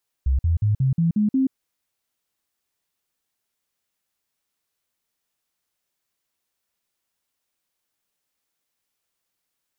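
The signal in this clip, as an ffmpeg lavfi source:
-f lavfi -i "aevalsrc='0.158*clip(min(mod(t,0.18),0.13-mod(t,0.18))/0.005,0,1)*sin(2*PI*66.2*pow(2,floor(t/0.18)/3)*mod(t,0.18))':d=1.26:s=44100"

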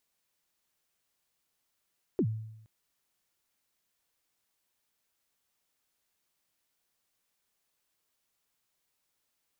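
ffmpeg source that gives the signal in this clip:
-f lavfi -i "aevalsrc='0.0794*pow(10,-3*t/0.85)*sin(2*PI*(430*0.069/log(110/430)*(exp(log(110/430)*min(t,0.069)/0.069)-1)+110*max(t-0.069,0)))':d=0.47:s=44100"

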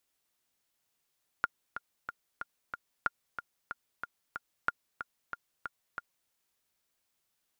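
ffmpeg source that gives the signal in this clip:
-f lavfi -i "aevalsrc='pow(10,(-14-10*gte(mod(t,5*60/185),60/185))/20)*sin(2*PI*1410*mod(t,60/185))*exp(-6.91*mod(t,60/185)/0.03)':d=4.86:s=44100"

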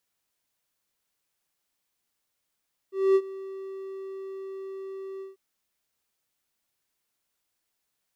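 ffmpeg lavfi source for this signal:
-f lavfi -i "aevalsrc='0.211*(1-4*abs(mod(386*t+0.25,1)-0.5))':d=2.442:s=44100,afade=t=in:d=0.233,afade=t=out:st=0.233:d=0.056:silence=0.106,afade=t=out:st=2.29:d=0.152"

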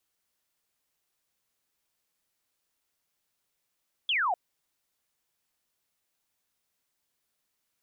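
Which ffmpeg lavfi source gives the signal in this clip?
-f lavfi -i "aevalsrc='0.0631*clip(t/0.002,0,1)*clip((0.25-t)/0.002,0,1)*sin(2*PI*3500*0.25/log(670/3500)*(exp(log(670/3500)*t/0.25)-1))':d=0.25:s=44100"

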